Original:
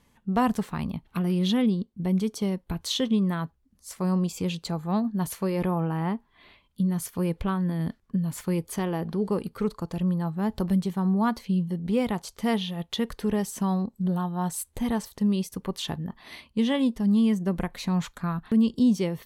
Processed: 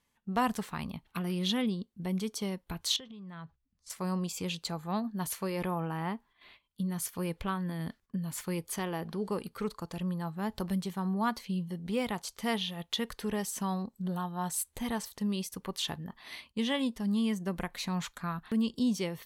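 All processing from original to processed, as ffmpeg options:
-filter_complex "[0:a]asettb=1/sr,asplit=3[a][b][c];[a]atrim=end=2.964[d];[b]atrim=start=2.96:end=3.9,asetpts=PTS-STARTPTS,afade=t=in:d=0.004:c=qsin,afade=t=out:st=0.936:d=0.004:c=qsin,acompressor=threshold=-36dB:ratio=10:attack=3.2:release=140:knee=1:detection=peak,lowpass=5k,lowshelf=f=180:t=q:w=1.5:g=6[e];[c]atrim=start=3.896[f];[d][e]acrossfade=d=0.004:c1=hsin:c2=qsin[g];[g][f]acrossfade=d=0.004:c1=qsin:c2=hsin,tiltshelf=f=750:g=-4.5,agate=range=-9dB:threshold=-52dB:ratio=16:detection=peak,volume=-4.5dB"

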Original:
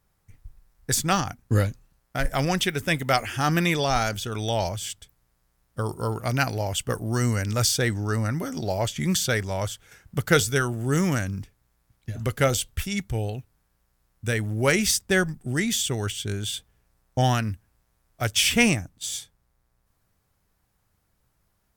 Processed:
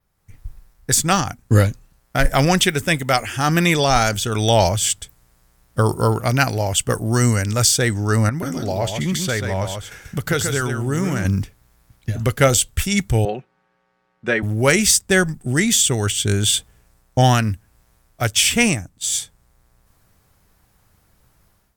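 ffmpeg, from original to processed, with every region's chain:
-filter_complex "[0:a]asettb=1/sr,asplit=3[a][b][c];[a]atrim=end=8.294[d];[b]atrim=start=8.29:end=11.25,asetpts=PTS-STARTPTS,afade=t=in:d=0.004:c=qsin,afade=t=out:st=2.956:d=0.004:c=qsin,acompressor=threshold=-38dB:ratio=2:attack=3.2:release=140:knee=1:detection=peak,aecho=1:1:136:0.501,atrim=end_sample=130536,adynamicequalizer=threshold=0.00316:dfrequency=3700:dqfactor=0.7:tfrequency=3700:tqfactor=0.7:attack=5:release=100:ratio=0.375:range=3:mode=cutabove:tftype=highshelf[e];[c]atrim=start=11.246[f];[d][e]acrossfade=d=0.004:c1=hsin:c2=qsin[g];[g][f]acrossfade=d=0.004:c1=qsin:c2=hsin,asettb=1/sr,asplit=3[h][i][j];[h]atrim=end=13.254[k];[i]atrim=start=13.25:end=14.43,asetpts=PTS-STARTPTS,afade=t=in:d=0.004:c=qsin,afade=t=out:st=1.176:d=0.004:c=qsin,highpass=280,lowpass=2.2k,aecho=1:1:5.4:0.57,atrim=end_sample=52038[l];[j]atrim=start=14.426[m];[k][l]acrossfade=d=0.004:c1=hsin:c2=qsin[n];[n][m]acrossfade=d=0.004:c1=qsin:c2=hsin,adynamicequalizer=threshold=0.00708:dfrequency=7900:dqfactor=2.2:tfrequency=7900:tqfactor=2.2:attack=5:release=100:ratio=0.375:range=3:mode=boostabove:tftype=bell,dynaudnorm=f=130:g=5:m=13dB,volume=-1dB"

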